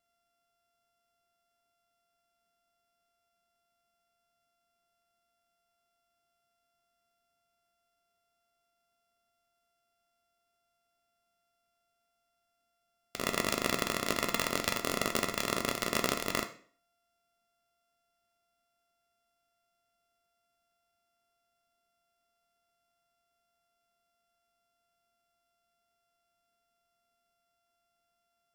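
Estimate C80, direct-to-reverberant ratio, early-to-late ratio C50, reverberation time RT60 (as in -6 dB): 16.0 dB, 4.0 dB, 12.5 dB, 0.50 s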